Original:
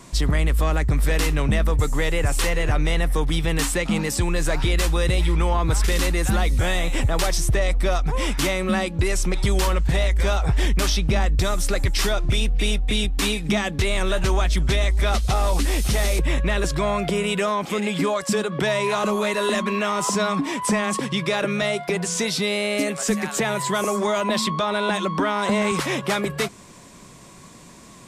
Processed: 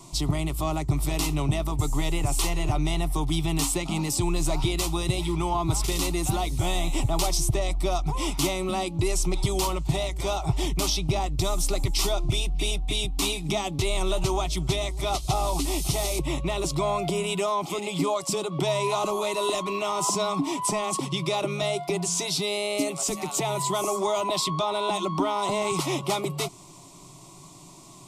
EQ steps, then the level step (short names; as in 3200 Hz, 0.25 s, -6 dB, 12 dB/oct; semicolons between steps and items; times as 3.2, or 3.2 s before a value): fixed phaser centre 330 Hz, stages 8; 0.0 dB